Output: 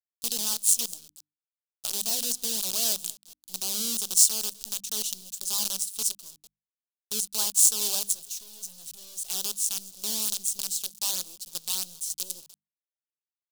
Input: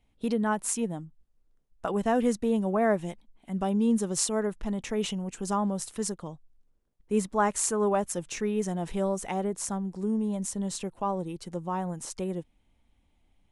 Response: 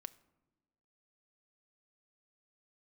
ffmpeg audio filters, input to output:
-filter_complex "[0:a]asettb=1/sr,asplit=3[s0][s1][s2];[s0]atrim=end=8.134[s3];[s1]atrim=start=8.13:end=9.24,asetpts=PTS-STARTPTS,afade=t=in:d=0.004:c=qsin,afade=t=out:st=1.106:d=0.004:c=qsin,volume=56.2,asoftclip=hard,volume=0.0178[s4];[s2]atrim=start=9.236[s5];[s3][s4]acrossfade=d=0.004:c1=hsin:c2=qsin[s6];[s6][s5]acrossfade=d=0.004:c1=qsin:c2=hsin,asplit=2[s7][s8];[s8]adelay=219,lowpass=f=4700:p=1,volume=0.1,asplit=2[s9][s10];[s10]adelay=219,lowpass=f=4700:p=1,volume=0.32,asplit=2[s11][s12];[s12]adelay=219,lowpass=f=4700:p=1,volume=0.32[s13];[s7][s9][s11][s13]amix=inputs=4:normalize=0,acrusher=bits=5:dc=4:mix=0:aa=0.000001,aexciter=amount=15.4:drive=7.7:freq=3200,bandreject=f=50:t=h:w=6,bandreject=f=100:t=h:w=6,bandreject=f=150:t=h:w=6,bandreject=f=200:t=h:w=6,bandreject=f=250:t=h:w=6,bandreject=f=300:t=h:w=6,volume=0.133"

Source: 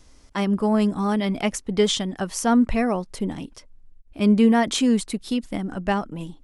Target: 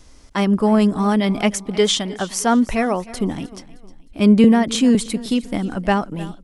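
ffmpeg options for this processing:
-filter_complex "[0:a]asettb=1/sr,asplit=3[s0][s1][s2];[s0]atrim=end=1.524[s3];[s1]atrim=start=1.52:end=3.14,asetpts=PTS-STARTPTS,afade=t=in:d=0.004:c=qsin,afade=t=out:st=1.616:d=0.004:c=qsin,lowshelf=f=240:g=-7.5[s4];[s2]atrim=start=3.136[s5];[s3][s4]acrossfade=d=0.004:c1=hsin:c2=qsin[s6];[s6][s5]acrossfade=d=0.004:c1=qsin:c2=hsin,asettb=1/sr,asplit=3[s7][s8][s9];[s7]atrim=end=4.444[s10];[s8]atrim=start=4.44:end=4.95,asetpts=PTS-STARTPTS,afade=t=in:d=0.004:c=qsin,afade=t=out:st=0.506:d=0.004:c=qsin,acrossover=split=370[s11][s12];[s12]acompressor=threshold=0.0562:ratio=3[s13];[s11][s13]amix=inputs=2:normalize=0[s14];[s9]atrim=start=4.946[s15];[s10][s14]acrossfade=d=0.004:c1=hsin:c2=qsin[s16];[s16][s15]acrossfade=d=0.004:c1=qsin:c2=hsin,aecho=1:1:309|618|927:0.119|0.0475|0.019,volume=1.78"

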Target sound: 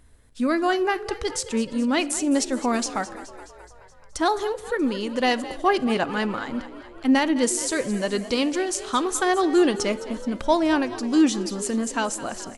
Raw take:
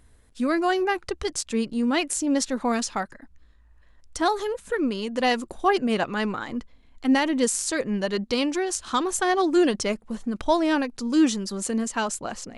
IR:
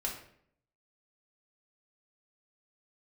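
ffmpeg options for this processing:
-filter_complex "[0:a]asplit=8[s0][s1][s2][s3][s4][s5][s6][s7];[s1]adelay=212,afreqshift=48,volume=0.168[s8];[s2]adelay=424,afreqshift=96,volume=0.106[s9];[s3]adelay=636,afreqshift=144,volume=0.0668[s10];[s4]adelay=848,afreqshift=192,volume=0.0422[s11];[s5]adelay=1060,afreqshift=240,volume=0.0263[s12];[s6]adelay=1272,afreqshift=288,volume=0.0166[s13];[s7]adelay=1484,afreqshift=336,volume=0.0105[s14];[s0][s8][s9][s10][s11][s12][s13][s14]amix=inputs=8:normalize=0,asplit=2[s15][s16];[1:a]atrim=start_sample=2205,asetrate=27342,aresample=44100[s17];[s16][s17]afir=irnorm=-1:irlink=0,volume=0.1[s18];[s15][s18]amix=inputs=2:normalize=0"

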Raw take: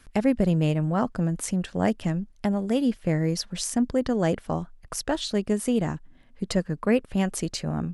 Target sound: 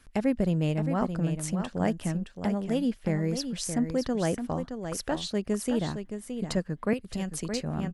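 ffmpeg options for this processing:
-filter_complex "[0:a]aecho=1:1:619:0.398,asettb=1/sr,asplit=3[s0][s1][s2];[s0]atrim=end=6.934[s3];[s1]atrim=start=6.93:end=7.49,asetpts=PTS-STARTPTS,afade=t=in:d=0.004:c=qsin,afade=t=out:st=0.556:d=0.004:c=qsin,acrossover=split=180|3000[s4][s5][s6];[s5]acompressor=threshold=0.0316:ratio=6[s7];[s4][s7][s6]amix=inputs=3:normalize=0[s8];[s2]atrim=start=7.486[s9];[s3][s8]acrossfade=d=0.004:c1=hsin:c2=qsin[s10];[s10][s9]acrossfade=d=0.004:c1=qsin:c2=hsin,volume=0.631"

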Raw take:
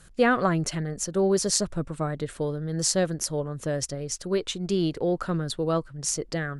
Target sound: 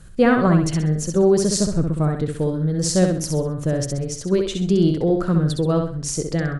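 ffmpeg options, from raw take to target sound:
-af "lowshelf=f=370:g=11.5,aecho=1:1:65|130|195|260:0.562|0.191|0.065|0.0221"

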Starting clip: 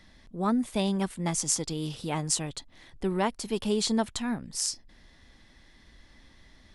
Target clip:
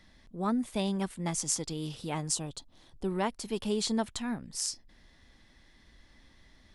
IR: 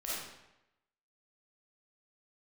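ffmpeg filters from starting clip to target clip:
-filter_complex "[0:a]asettb=1/sr,asplit=3[s0][s1][s2];[s0]atrim=end=2.324[s3];[s1]atrim=start=2.32:end=3.08,asetpts=PTS-STARTPTS,afade=t=in:d=0.004:c=qsin,afade=t=out:st=0.756:d=0.004:c=qsin,equalizer=f=2000:t=o:w=0.58:g=-12.5[s4];[s2]atrim=start=3.076[s5];[s3][s4]acrossfade=d=0.004:c1=hsin:c2=qsin[s6];[s6][s5]acrossfade=d=0.004:c1=qsin:c2=hsin,volume=0.668"

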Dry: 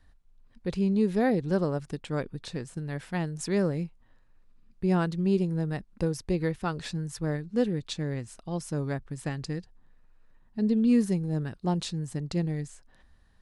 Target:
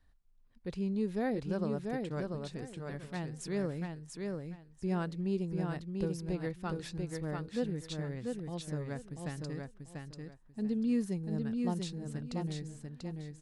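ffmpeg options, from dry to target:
-af "aecho=1:1:690|1380|2070:0.631|0.145|0.0334,volume=0.376"

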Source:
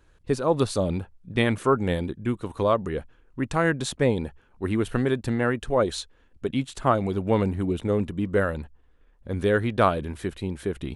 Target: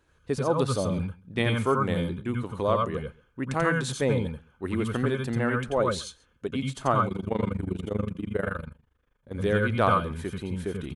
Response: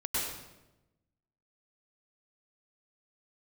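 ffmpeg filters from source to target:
-filter_complex "[0:a]highpass=f=110:p=1,aecho=1:1:134:0.0668[s0];[1:a]atrim=start_sample=2205,atrim=end_sample=4410,asetrate=48510,aresample=44100[s1];[s0][s1]afir=irnorm=-1:irlink=0,asplit=3[s2][s3][s4];[s2]afade=t=out:st=7.06:d=0.02[s5];[s3]tremolo=f=25:d=0.919,afade=t=in:st=7.06:d=0.02,afade=t=out:st=9.33:d=0.02[s6];[s4]afade=t=in:st=9.33:d=0.02[s7];[s5][s6][s7]amix=inputs=3:normalize=0"

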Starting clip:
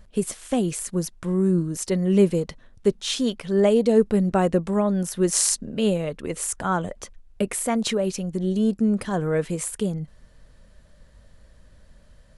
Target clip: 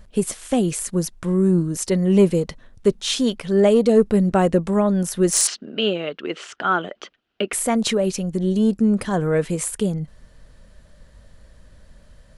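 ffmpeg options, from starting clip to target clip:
-filter_complex "[0:a]acontrast=43,asettb=1/sr,asplit=3[s0][s1][s2];[s0]atrim=end=5.474[s3];[s1]atrim=start=5.47:end=7.53,asetpts=PTS-STARTPTS,afade=t=in:d=0.004:c=qsin,afade=t=out:st=2.056:d=0.004:c=qsin,highpass=310,equalizer=f=350:t=q:w=4:g=4,equalizer=f=520:t=q:w=4:g=-5,equalizer=f=960:t=q:w=4:g=-5,equalizer=f=1400:t=q:w=4:g=6,equalizer=f=3000:t=q:w=4:g=9,lowpass=f=4600:w=0.5412,lowpass=f=4600:w=1.3066[s4];[s2]atrim=start=7.526[s5];[s3][s4]acrossfade=d=0.004:c1=hsin:c2=qsin[s6];[s6][s5]acrossfade=d=0.004:c1=qsin:c2=hsin,volume=0.794"

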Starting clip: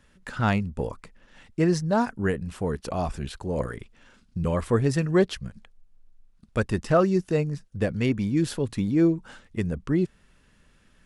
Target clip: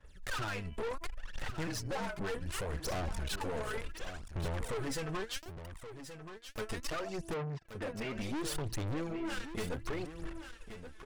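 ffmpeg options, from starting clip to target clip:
-filter_complex "[0:a]agate=range=0.0224:threshold=0.00316:ratio=3:detection=peak,equalizer=f=210:w=2:g=-14.5,bandreject=f=332.2:t=h:w=4,bandreject=f=664.4:t=h:w=4,bandreject=f=996.6:t=h:w=4,bandreject=f=1328.8:t=h:w=4,bandreject=f=1661:t=h:w=4,bandreject=f=1993.2:t=h:w=4,bandreject=f=2325.4:t=h:w=4,bandreject=f=2657.6:t=h:w=4,bandreject=f=2989.8:t=h:w=4,acompressor=threshold=0.0126:ratio=16,asettb=1/sr,asplit=3[s0][s1][s2];[s0]atrim=end=5.374[s3];[s1]atrim=start=5.37:end=6.58,asetpts=PTS-STARTPTS,afade=t=in:d=0.004:c=qsin,afade=t=out:st=1.206:d=0.004:c=qsin,acrusher=bits=4:dc=4:mix=0:aa=0.000001[s4];[s2]atrim=start=6.576[s5];[s3][s4]acrossfade=d=0.004:c1=hsin:c2=qsin[s6];[s6][s5]acrossfade=d=0.004:c1=qsin:c2=hsin,aphaser=in_gain=1:out_gain=1:delay=4.7:decay=0.77:speed=0.68:type=sinusoidal,asettb=1/sr,asplit=3[s7][s8][s9];[s7]atrim=end=1.674[s10];[s8]atrim=start=1.67:end=2.21,asetpts=PTS-STARTPTS,afade=t=in:d=0.004:c=qsin,afade=t=out:st=0.536:d=0.004:c=qsin,afreqshift=-40[s11];[s9]atrim=start=2.206[s12];[s10][s11]acrossfade=d=0.004:c1=hsin:c2=qsin[s13];[s13][s12]acrossfade=d=0.004:c1=qsin:c2=hsin,aeval=exprs='(tanh(200*val(0)+0.5)-tanh(0.5))/200':c=same,asplit=3[s14][s15][s16];[s14]afade=t=out:st=7.33:d=0.02[s17];[s15]highpass=130,lowpass=2800,afade=t=in:st=7.33:d=0.02,afade=t=out:st=8.14:d=0.02[s18];[s16]afade=t=in:st=8.14:d=0.02[s19];[s17][s18][s19]amix=inputs=3:normalize=0,aecho=1:1:1127:0.299,volume=3.55"

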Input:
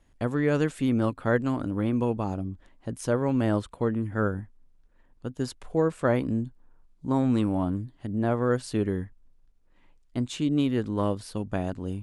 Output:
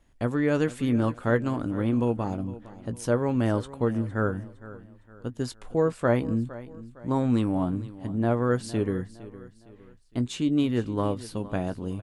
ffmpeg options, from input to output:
-filter_complex "[0:a]asplit=2[s0][s1];[s1]adelay=17,volume=0.237[s2];[s0][s2]amix=inputs=2:normalize=0,asplit=2[s3][s4];[s4]aecho=0:1:460|920|1380:0.141|0.0565|0.0226[s5];[s3][s5]amix=inputs=2:normalize=0"

